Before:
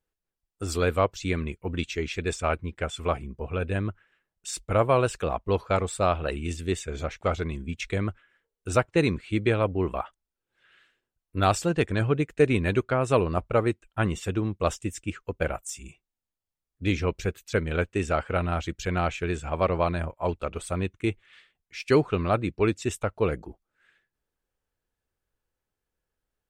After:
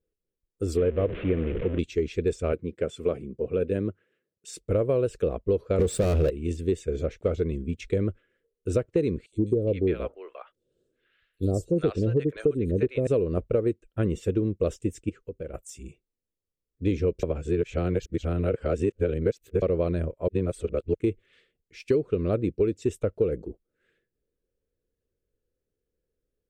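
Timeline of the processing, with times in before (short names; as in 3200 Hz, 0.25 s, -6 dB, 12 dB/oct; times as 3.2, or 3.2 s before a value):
0.77–1.79 delta modulation 16 kbps, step -26 dBFS
2.52–4.66 HPF 130 Hz
5.79–6.3 sample leveller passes 5
9.26–13.07 three bands offset in time highs, lows, mids 60/410 ms, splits 730/5200 Hz
15.09–15.54 compressor 2.5:1, threshold -42 dBFS
17.23–19.62 reverse
20.28–20.94 reverse
whole clip: resonant low shelf 630 Hz +9.5 dB, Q 3; compressor 12:1, threshold -12 dBFS; gain -7.5 dB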